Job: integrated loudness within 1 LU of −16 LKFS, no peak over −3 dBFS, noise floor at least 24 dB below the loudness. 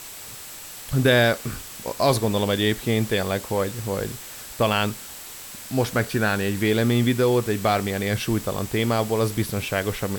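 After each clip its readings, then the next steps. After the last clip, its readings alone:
interfering tone 7,700 Hz; level of the tone −46 dBFS; background noise floor −39 dBFS; target noise floor −47 dBFS; integrated loudness −23.0 LKFS; sample peak −5.0 dBFS; target loudness −16.0 LKFS
→ notch filter 7,700 Hz, Q 30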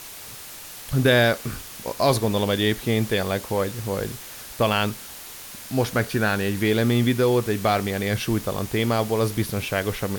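interfering tone none found; background noise floor −40 dBFS; target noise floor −47 dBFS
→ broadband denoise 7 dB, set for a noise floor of −40 dBFS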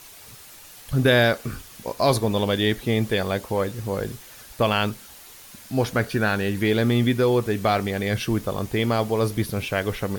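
background noise floor −45 dBFS; target noise floor −47 dBFS
→ broadband denoise 6 dB, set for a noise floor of −45 dBFS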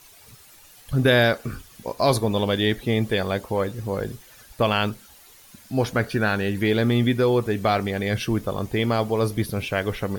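background noise floor −50 dBFS; integrated loudness −23.0 LKFS; sample peak −5.5 dBFS; target loudness −16.0 LKFS
→ level +7 dB
brickwall limiter −3 dBFS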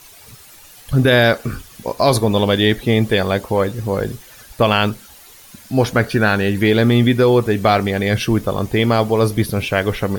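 integrated loudness −16.5 LKFS; sample peak −3.0 dBFS; background noise floor −43 dBFS

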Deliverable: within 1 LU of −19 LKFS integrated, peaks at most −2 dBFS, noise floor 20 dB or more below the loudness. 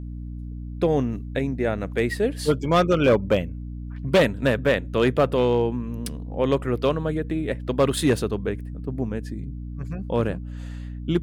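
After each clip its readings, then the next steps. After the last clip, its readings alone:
share of clipped samples 0.8%; peaks flattened at −12.0 dBFS; mains hum 60 Hz; hum harmonics up to 300 Hz; level of the hum −31 dBFS; integrated loudness −24.0 LKFS; sample peak −12.0 dBFS; target loudness −19.0 LKFS
→ clipped peaks rebuilt −12 dBFS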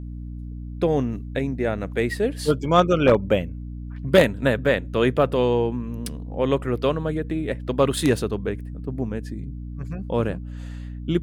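share of clipped samples 0.0%; mains hum 60 Hz; hum harmonics up to 300 Hz; level of the hum −31 dBFS
→ hum removal 60 Hz, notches 5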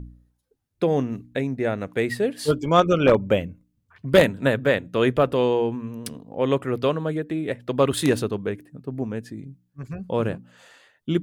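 mains hum none found; integrated loudness −23.0 LKFS; sample peak −2.0 dBFS; target loudness −19.0 LKFS
→ level +4 dB
brickwall limiter −2 dBFS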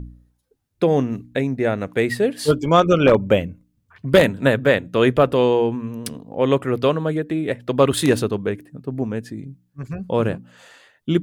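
integrated loudness −19.5 LKFS; sample peak −2.0 dBFS; background noise floor −69 dBFS

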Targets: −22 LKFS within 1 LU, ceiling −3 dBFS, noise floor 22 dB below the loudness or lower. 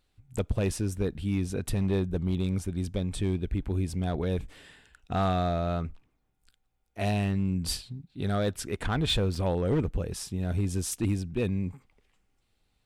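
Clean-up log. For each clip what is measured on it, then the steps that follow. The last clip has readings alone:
share of clipped samples 1.2%; peaks flattened at −20.0 dBFS; number of dropouts 1; longest dropout 4.2 ms; integrated loudness −30.0 LKFS; sample peak −20.0 dBFS; target loudness −22.0 LKFS
→ clipped peaks rebuilt −20 dBFS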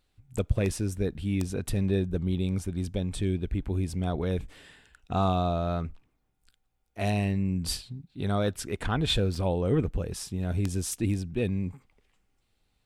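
share of clipped samples 0.0%; number of dropouts 1; longest dropout 4.2 ms
→ repair the gap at 0:09.35, 4.2 ms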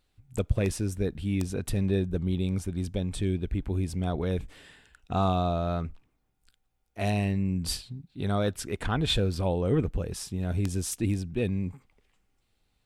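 number of dropouts 0; integrated loudness −29.5 LKFS; sample peak −11.0 dBFS; target loudness −22.0 LKFS
→ level +7.5 dB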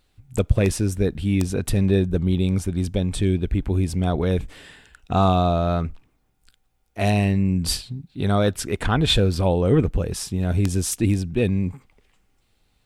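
integrated loudness −22.0 LKFS; sample peak −3.5 dBFS; background noise floor −66 dBFS

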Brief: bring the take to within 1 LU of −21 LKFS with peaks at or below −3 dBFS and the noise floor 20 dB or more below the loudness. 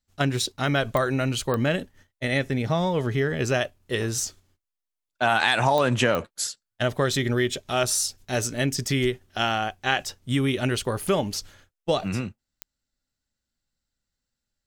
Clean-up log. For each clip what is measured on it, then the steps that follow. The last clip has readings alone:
number of clicks 5; integrated loudness −25.0 LKFS; sample peak −5.5 dBFS; target loudness −21.0 LKFS
→ click removal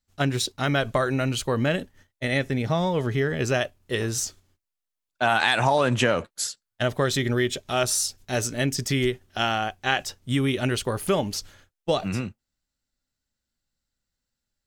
number of clicks 0; integrated loudness −25.0 LKFS; sample peak −5.5 dBFS; target loudness −21.0 LKFS
→ level +4 dB
brickwall limiter −3 dBFS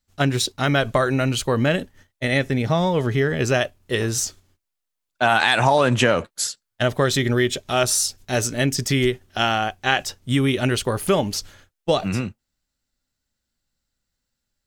integrated loudness −21.0 LKFS; sample peak −3.0 dBFS; background noise floor −81 dBFS

